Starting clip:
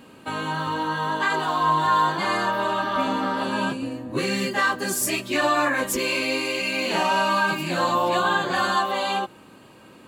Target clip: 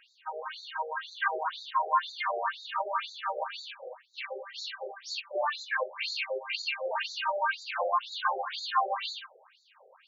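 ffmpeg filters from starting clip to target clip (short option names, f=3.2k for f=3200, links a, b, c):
-filter_complex "[0:a]asettb=1/sr,asplit=3[a][b][c];[a]atrim=end=3.814[d];[b]atrim=start=3.81:end=4.24,asetpts=PTS-STARTPTS,afade=t=in:d=0.004:c=qsin,afade=t=out:st=0.426:d=0.004:c=qsin,aeval=exprs='clip(val(0),-1,0.0211)':c=same[e];[c]atrim=start=4.236[f];[d][e]acrossfade=d=0.004:c1=hsin:c2=qsin[g];[g][f]acrossfade=d=0.004:c1=qsin:c2=hsin,afftfilt=real='re*between(b*sr/1024,540*pow(5200/540,0.5+0.5*sin(2*PI*2*pts/sr))/1.41,540*pow(5200/540,0.5+0.5*sin(2*PI*2*pts/sr))*1.41)':imag='im*between(b*sr/1024,540*pow(5200/540,0.5+0.5*sin(2*PI*2*pts/sr))/1.41,540*pow(5200/540,0.5+0.5*sin(2*PI*2*pts/sr))*1.41)':win_size=1024:overlap=0.75,volume=-2dB"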